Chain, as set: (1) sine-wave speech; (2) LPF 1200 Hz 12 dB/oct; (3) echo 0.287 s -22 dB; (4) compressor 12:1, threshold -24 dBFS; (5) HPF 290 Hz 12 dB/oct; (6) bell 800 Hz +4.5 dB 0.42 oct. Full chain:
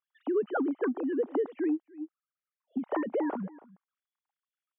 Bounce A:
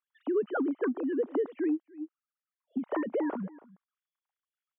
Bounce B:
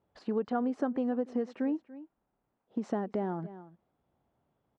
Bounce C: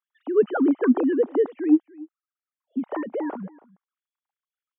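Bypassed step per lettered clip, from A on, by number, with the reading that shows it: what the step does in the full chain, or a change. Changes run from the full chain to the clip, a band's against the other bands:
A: 6, 1 kHz band -2.0 dB; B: 1, 2 kHz band -5.5 dB; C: 4, mean gain reduction 5.5 dB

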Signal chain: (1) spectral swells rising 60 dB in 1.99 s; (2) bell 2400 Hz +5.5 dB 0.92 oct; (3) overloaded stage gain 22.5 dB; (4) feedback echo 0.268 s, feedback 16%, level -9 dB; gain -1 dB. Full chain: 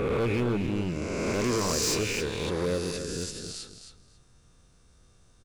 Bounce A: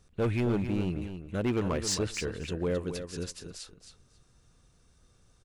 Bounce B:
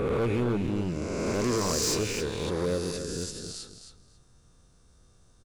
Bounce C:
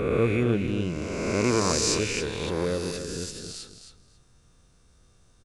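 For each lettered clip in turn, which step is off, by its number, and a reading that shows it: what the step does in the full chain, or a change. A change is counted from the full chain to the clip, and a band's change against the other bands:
1, 125 Hz band +5.0 dB; 2, 2 kHz band -3.5 dB; 3, distortion -9 dB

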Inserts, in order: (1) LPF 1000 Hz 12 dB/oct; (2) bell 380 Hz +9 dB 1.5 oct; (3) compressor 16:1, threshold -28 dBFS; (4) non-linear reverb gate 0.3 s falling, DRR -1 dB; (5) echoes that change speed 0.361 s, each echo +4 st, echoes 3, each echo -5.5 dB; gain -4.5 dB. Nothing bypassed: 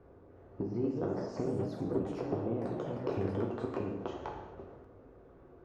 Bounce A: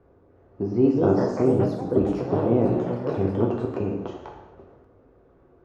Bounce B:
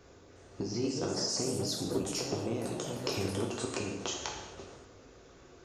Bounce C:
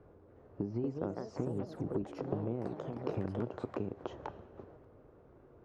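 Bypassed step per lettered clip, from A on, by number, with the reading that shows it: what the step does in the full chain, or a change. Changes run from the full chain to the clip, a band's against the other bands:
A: 3, mean gain reduction 8.0 dB; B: 1, 4 kHz band +22.0 dB; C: 4, momentary loudness spread change +3 LU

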